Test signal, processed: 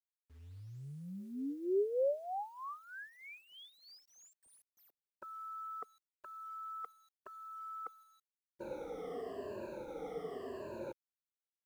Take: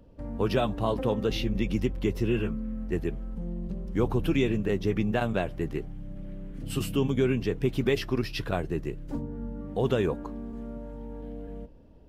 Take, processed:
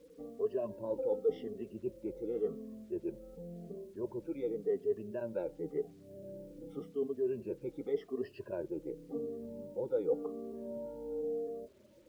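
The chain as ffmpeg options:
-af "afftfilt=real='re*pow(10,21/40*sin(2*PI*(1.4*log(max(b,1)*sr/1024/100)/log(2)-(-0.9)*(pts-256)/sr)))':imag='im*pow(10,21/40*sin(2*PI*(1.4*log(max(b,1)*sr/1024/100)/log(2)-(-0.9)*(pts-256)/sr)))':win_size=1024:overlap=0.75,areverse,acompressor=threshold=0.0447:ratio=16,areverse,afftdn=nr=25:nf=-50,bandpass=f=460:t=q:w=3.1:csg=0,acrusher=bits=11:mix=0:aa=0.000001,volume=1.19"

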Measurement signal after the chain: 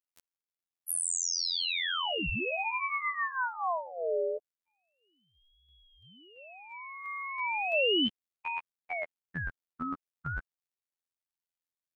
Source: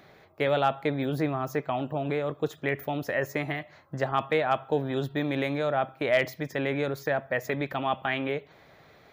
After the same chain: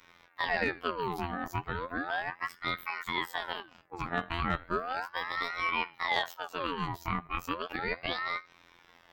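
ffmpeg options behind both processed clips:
-af "afftfilt=real='hypot(re,im)*cos(PI*b)':imag='0':win_size=2048:overlap=0.75,aeval=exprs='val(0)*sin(2*PI*1100*n/s+1100*0.55/0.35*sin(2*PI*0.35*n/s))':c=same,volume=1.19"

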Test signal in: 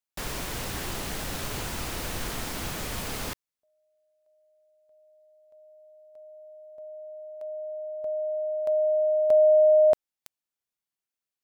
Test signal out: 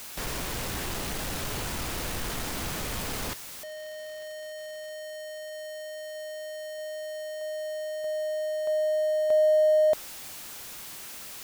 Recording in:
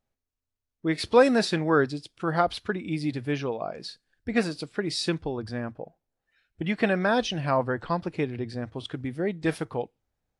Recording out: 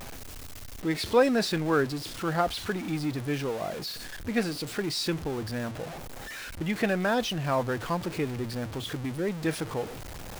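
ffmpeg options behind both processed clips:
-af "aeval=exprs='val(0)+0.5*0.0335*sgn(val(0))':c=same,volume=0.631"

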